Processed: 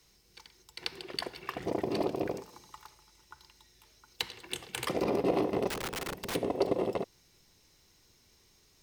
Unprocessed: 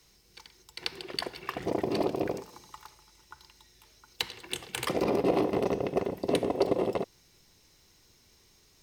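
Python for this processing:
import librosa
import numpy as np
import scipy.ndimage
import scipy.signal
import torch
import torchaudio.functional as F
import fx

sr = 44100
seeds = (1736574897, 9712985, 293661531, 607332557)

y = fx.overflow_wrap(x, sr, gain_db=28.0, at=(5.67, 6.34), fade=0.02)
y = y * librosa.db_to_amplitude(-2.5)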